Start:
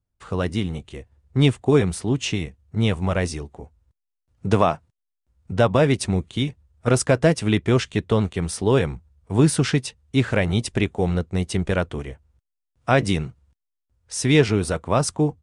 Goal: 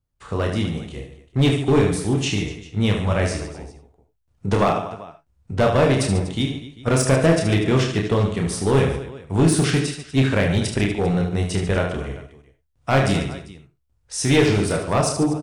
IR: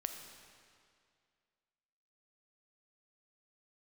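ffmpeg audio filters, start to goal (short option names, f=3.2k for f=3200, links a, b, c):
-filter_complex "[0:a]aecho=1:1:30|75|142.5|243.8|395.6:0.631|0.398|0.251|0.158|0.1[a];[1:a]atrim=start_sample=2205,atrim=end_sample=4410[b];[a][b]afir=irnorm=-1:irlink=0,aeval=exprs='clip(val(0),-1,0.188)':c=same,volume=1.5dB"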